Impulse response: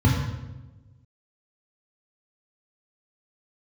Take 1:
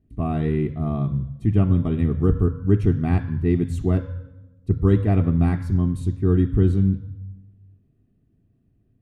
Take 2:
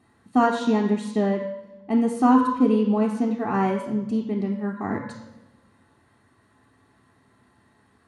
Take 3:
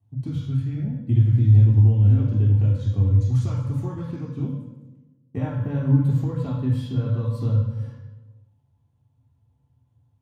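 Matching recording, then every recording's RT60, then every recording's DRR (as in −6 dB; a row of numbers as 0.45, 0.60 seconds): 3; 1.1, 1.1, 1.1 seconds; 11.5, 3.5, −2.5 decibels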